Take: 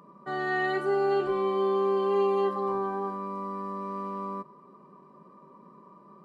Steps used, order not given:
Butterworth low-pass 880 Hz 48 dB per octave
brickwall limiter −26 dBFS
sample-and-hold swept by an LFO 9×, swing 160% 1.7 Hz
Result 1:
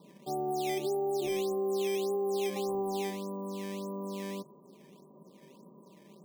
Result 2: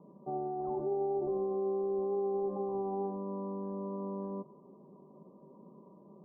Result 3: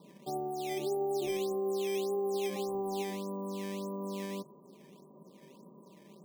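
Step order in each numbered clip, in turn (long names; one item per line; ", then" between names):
Butterworth low-pass, then sample-and-hold swept by an LFO, then brickwall limiter
sample-and-hold swept by an LFO, then brickwall limiter, then Butterworth low-pass
brickwall limiter, then Butterworth low-pass, then sample-and-hold swept by an LFO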